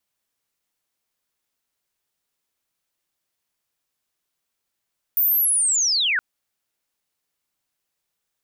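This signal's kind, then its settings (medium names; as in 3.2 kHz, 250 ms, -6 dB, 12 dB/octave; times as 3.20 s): sweep linear 15 kHz -> 1.4 kHz -15.5 dBFS -> -18 dBFS 1.02 s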